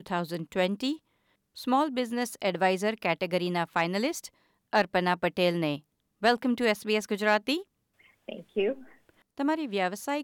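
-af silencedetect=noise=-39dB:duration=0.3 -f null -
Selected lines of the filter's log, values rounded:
silence_start: 0.96
silence_end: 1.57 | silence_duration: 0.61
silence_start: 4.27
silence_end: 4.73 | silence_duration: 0.46
silence_start: 5.77
silence_end: 6.22 | silence_duration: 0.45
silence_start: 7.62
silence_end: 8.28 | silence_duration: 0.66
silence_start: 8.81
silence_end: 9.38 | silence_duration: 0.57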